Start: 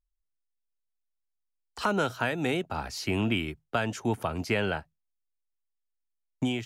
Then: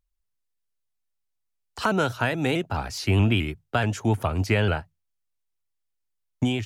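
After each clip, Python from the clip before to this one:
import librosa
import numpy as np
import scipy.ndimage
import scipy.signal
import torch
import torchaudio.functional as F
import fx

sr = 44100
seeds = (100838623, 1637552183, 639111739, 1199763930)

y = fx.peak_eq(x, sr, hz=96.0, db=11.0, octaves=0.57)
y = fx.vibrato_shape(y, sr, shape='saw_up', rate_hz=4.7, depth_cents=100.0)
y = F.gain(torch.from_numpy(y), 3.5).numpy()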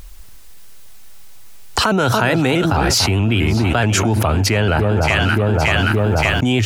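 y = fx.echo_alternate(x, sr, ms=287, hz=1200.0, feedback_pct=64, wet_db=-12.5)
y = fx.env_flatten(y, sr, amount_pct=100)
y = F.gain(torch.from_numpy(y), 2.0).numpy()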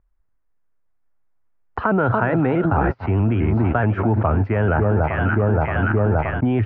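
y = scipy.signal.sosfilt(scipy.signal.butter(4, 1700.0, 'lowpass', fs=sr, output='sos'), x)
y = fx.upward_expand(y, sr, threshold_db=-34.0, expansion=2.5)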